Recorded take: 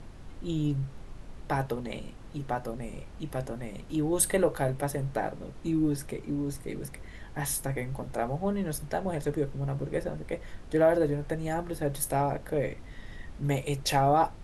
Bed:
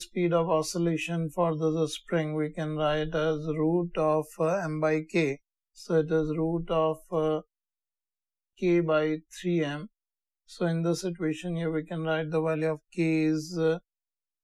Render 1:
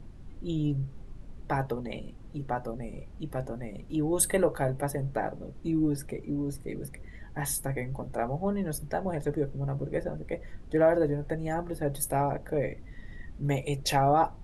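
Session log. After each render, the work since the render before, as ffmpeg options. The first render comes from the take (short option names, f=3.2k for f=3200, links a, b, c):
-af "afftdn=nr=9:nf=-46"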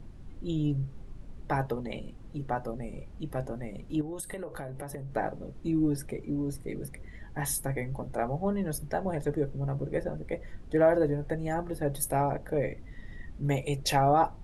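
-filter_complex "[0:a]asettb=1/sr,asplit=3[a][b][c];[a]atrim=end=4.014[d];[b]atrim=start=4.01:end=5.15,asetpts=PTS-STARTPTS,afade=t=in:d=0.004:c=qsin,afade=t=out:st=1.136:d=0.004:c=qsin,acompressor=threshold=-34dB:ratio=12:attack=3.2:release=140:knee=1:detection=peak[e];[c]atrim=start=5.146[f];[d][e]acrossfade=d=0.004:c1=hsin:c2=qsin[g];[g][f]acrossfade=d=0.004:c1=qsin:c2=hsin"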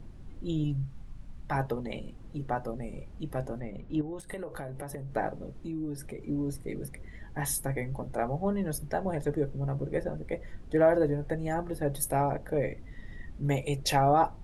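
-filter_complex "[0:a]asettb=1/sr,asplit=3[a][b][c];[a]atrim=end=0.644[d];[b]atrim=start=0.64:end=1.55,asetpts=PTS-STARTPTS,afade=t=in:d=0.004:c=qsin,afade=t=out:st=0.906:d=0.004:c=qsin,equalizer=f=420:w=1.5:g=-11.5[e];[c]atrim=start=1.546[f];[d][e]acrossfade=d=0.004:c1=hsin:c2=qsin[g];[g][f]acrossfade=d=0.004:c1=qsin:c2=hsin,asettb=1/sr,asplit=3[h][i][j];[h]atrim=end=3.604[k];[i]atrim=start=3.6:end=4.29,asetpts=PTS-STARTPTS,afade=t=in:d=0.004:c=qsin,afade=t=out:st=0.686:d=0.004:c=qsin,adynamicsmooth=sensitivity=6:basefreq=3.5k[l];[j]atrim=start=4.286[m];[k][l]acrossfade=d=0.004:c1=hsin:c2=qsin[n];[n][m]acrossfade=d=0.004:c1=qsin:c2=hsin,asettb=1/sr,asplit=3[o][p][q];[o]atrim=end=5.554[r];[p]atrim=start=5.55:end=6.22,asetpts=PTS-STARTPTS,afade=t=in:d=0.004:c=qsin,afade=t=out:st=0.666:d=0.004:c=qsin,acompressor=threshold=-38dB:ratio=2:attack=3.2:release=140:knee=1:detection=peak[s];[q]atrim=start=6.216[t];[r][s]acrossfade=d=0.004:c1=hsin:c2=qsin[u];[u][t]acrossfade=d=0.004:c1=qsin:c2=hsin"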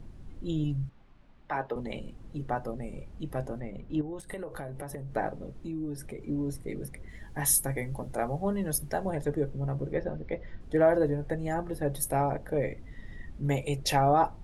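-filter_complex "[0:a]asettb=1/sr,asplit=3[a][b][c];[a]atrim=end=0.894[d];[b]atrim=start=0.89:end=1.76,asetpts=PTS-STARTPTS,afade=t=in:d=0.004:c=qsin,afade=t=out:st=0.866:d=0.004:c=qsin,acrossover=split=280 4300:gain=0.178 1 0.126[e][f][g];[e][f][g]amix=inputs=3:normalize=0[h];[c]atrim=start=1.756[i];[d][h]acrossfade=d=0.004:c1=hsin:c2=qsin[j];[j][i]acrossfade=d=0.004:c1=qsin:c2=hsin,asettb=1/sr,asplit=3[k][l][m];[k]atrim=end=7.094[n];[l]atrim=start=7.09:end=9.1,asetpts=PTS-STARTPTS,afade=t=in:d=0.004:c=qsin,afade=t=out:st=2.006:d=0.004:c=qsin,aemphasis=mode=production:type=cd[o];[m]atrim=start=9.096[p];[n][o]acrossfade=d=0.004:c1=hsin:c2=qsin[q];[q][p]acrossfade=d=0.004:c1=qsin:c2=hsin,asettb=1/sr,asplit=3[r][s][t];[r]atrim=end=9.934[u];[s]atrim=start=9.93:end=10.61,asetpts=PTS-STARTPTS,afade=t=in:d=0.004:c=qsin,afade=t=out:st=0.676:d=0.004:c=qsin,lowpass=f=5.2k:w=0.5412,lowpass=f=5.2k:w=1.3066[v];[t]atrim=start=10.606[w];[u][v]acrossfade=d=0.004:c1=hsin:c2=qsin[x];[x][w]acrossfade=d=0.004:c1=qsin:c2=hsin"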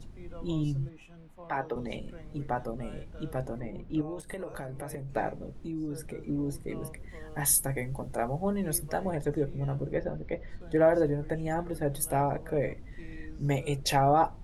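-filter_complex "[1:a]volume=-22.5dB[a];[0:a][a]amix=inputs=2:normalize=0"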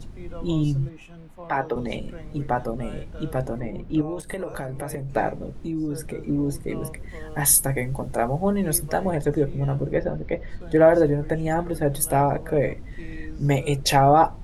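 -af "volume=7.5dB"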